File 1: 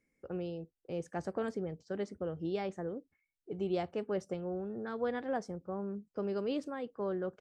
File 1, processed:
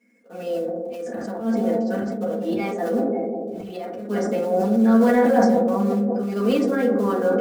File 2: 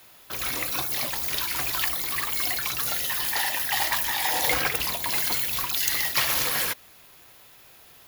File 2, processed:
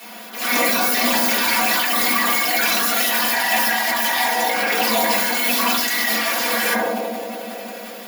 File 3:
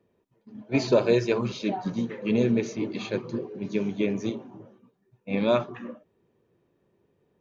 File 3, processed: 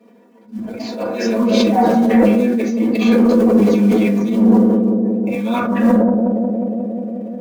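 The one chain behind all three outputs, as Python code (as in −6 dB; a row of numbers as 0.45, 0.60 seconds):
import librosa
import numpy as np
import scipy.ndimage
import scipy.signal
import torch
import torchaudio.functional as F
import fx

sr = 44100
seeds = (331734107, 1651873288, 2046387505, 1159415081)

p1 = fx.high_shelf(x, sr, hz=5200.0, db=-8.0)
p2 = p1 + 0.95 * np.pad(p1, (int(4.2 * sr / 1000.0), 0))[:len(p1)]
p3 = fx.quant_float(p2, sr, bits=2)
p4 = p2 + F.gain(torch.from_numpy(p3), -4.0).numpy()
p5 = fx.high_shelf(p4, sr, hz=2100.0, db=4.5)
p6 = p5 + fx.echo_bbd(p5, sr, ms=179, stages=1024, feedback_pct=80, wet_db=-11, dry=0)
p7 = fx.over_compress(p6, sr, threshold_db=-24.0, ratio=-1.0)
p8 = fx.brickwall_highpass(p7, sr, low_hz=190.0)
p9 = fx.auto_swell(p8, sr, attack_ms=254.0)
p10 = 10.0 ** (-16.0 / 20.0) * np.tanh(p9 / 10.0 ** (-16.0 / 20.0))
p11 = fx.rev_fdn(p10, sr, rt60_s=0.56, lf_ratio=1.0, hf_ratio=0.35, size_ms=27.0, drr_db=-5.0)
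p12 = fx.sustainer(p11, sr, db_per_s=20.0)
y = F.gain(torch.from_numpy(p12), 1.5).numpy()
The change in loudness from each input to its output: +16.5, +6.5, +12.0 LU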